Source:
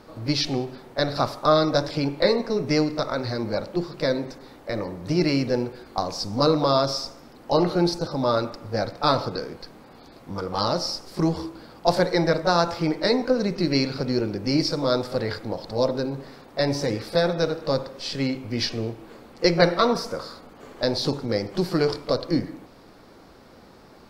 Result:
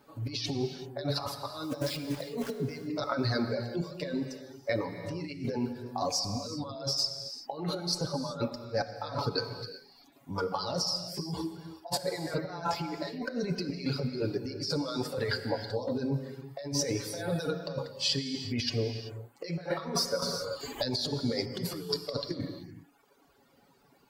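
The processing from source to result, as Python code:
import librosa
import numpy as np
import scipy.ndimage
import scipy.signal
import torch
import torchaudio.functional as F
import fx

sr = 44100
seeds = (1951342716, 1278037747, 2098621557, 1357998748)

y = fx.bin_expand(x, sr, power=1.5)
y = fx.highpass(y, sr, hz=220.0, slope=6)
y = fx.auto_swell(y, sr, attack_ms=228.0, at=(8.49, 9.01))
y = y + 0.55 * np.pad(y, (int(7.1 * sr / 1000.0), 0))[:len(y)]
y = fx.quant_dither(y, sr, seeds[0], bits=8, dither='none', at=(1.63, 2.52))
y = fx.over_compress(y, sr, threshold_db=-35.0, ratio=-1.0)
y = fx.dereverb_blind(y, sr, rt60_s=1.3)
y = fx.rev_gated(y, sr, seeds[1], gate_ms=410, shape='flat', drr_db=7.5)
y = fx.band_squash(y, sr, depth_pct=100, at=(20.22, 21.2))
y = y * librosa.db_to_amplitude(1.5)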